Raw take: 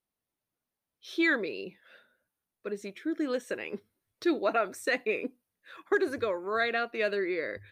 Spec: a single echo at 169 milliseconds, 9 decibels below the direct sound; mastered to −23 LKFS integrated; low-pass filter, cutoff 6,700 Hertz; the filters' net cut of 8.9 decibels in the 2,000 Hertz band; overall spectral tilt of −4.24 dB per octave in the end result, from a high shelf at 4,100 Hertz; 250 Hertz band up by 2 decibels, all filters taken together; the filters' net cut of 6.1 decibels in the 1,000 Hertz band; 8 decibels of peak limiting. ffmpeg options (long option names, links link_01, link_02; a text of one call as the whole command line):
ffmpeg -i in.wav -af "lowpass=6700,equalizer=frequency=250:width_type=o:gain=4,equalizer=frequency=1000:width_type=o:gain=-7,equalizer=frequency=2000:width_type=o:gain=-7,highshelf=frequency=4100:gain=-8,alimiter=level_in=1dB:limit=-24dB:level=0:latency=1,volume=-1dB,aecho=1:1:169:0.355,volume=12dB" out.wav